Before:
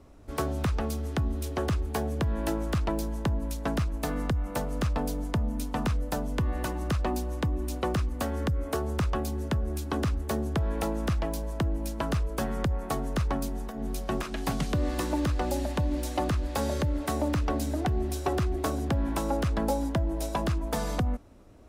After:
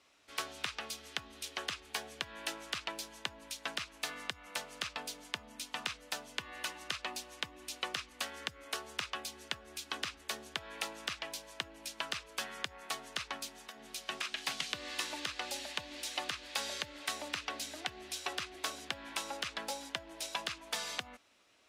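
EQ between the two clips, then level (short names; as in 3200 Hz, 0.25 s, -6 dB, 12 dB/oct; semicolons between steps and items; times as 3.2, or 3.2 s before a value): band-pass 2800 Hz, Q 1.2; high shelf 2900 Hz +10.5 dB; 0.0 dB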